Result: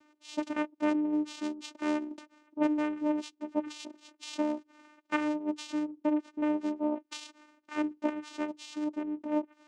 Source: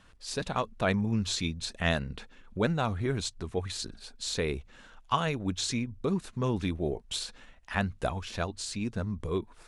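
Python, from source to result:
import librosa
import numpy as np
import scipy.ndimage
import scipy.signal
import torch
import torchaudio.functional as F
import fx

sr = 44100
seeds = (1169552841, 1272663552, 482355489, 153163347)

y = fx.dynamic_eq(x, sr, hz=3500.0, q=2.4, threshold_db=-48.0, ratio=4.0, max_db=4)
y = fx.env_lowpass_down(y, sr, base_hz=2700.0, full_db=-25.5)
y = fx.vocoder(y, sr, bands=4, carrier='saw', carrier_hz=301.0)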